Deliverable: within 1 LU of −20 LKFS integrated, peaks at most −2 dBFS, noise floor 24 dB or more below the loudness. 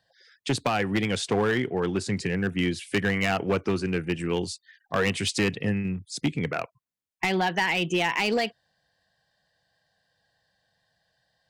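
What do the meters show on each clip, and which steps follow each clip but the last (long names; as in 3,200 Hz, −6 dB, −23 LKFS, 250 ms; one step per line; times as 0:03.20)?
share of clipped samples 1.2%; peaks flattened at −18.0 dBFS; integrated loudness −26.5 LKFS; sample peak −18.0 dBFS; target loudness −20.0 LKFS
→ clipped peaks rebuilt −18 dBFS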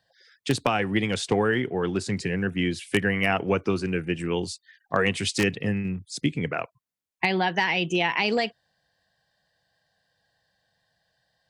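share of clipped samples 0.0%; integrated loudness −25.5 LKFS; sample peak −9.0 dBFS; target loudness −20.0 LKFS
→ level +5.5 dB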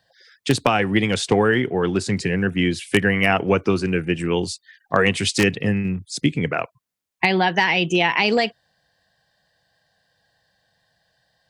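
integrated loudness −20.5 LKFS; sample peak −3.5 dBFS; background noise floor −68 dBFS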